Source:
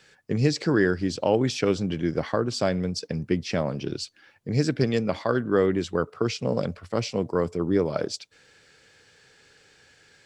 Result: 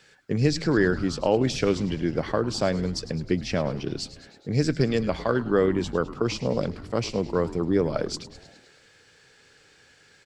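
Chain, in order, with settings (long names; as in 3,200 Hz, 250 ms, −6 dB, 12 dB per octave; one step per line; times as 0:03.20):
echo with shifted repeats 104 ms, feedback 63%, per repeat −140 Hz, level −15 dB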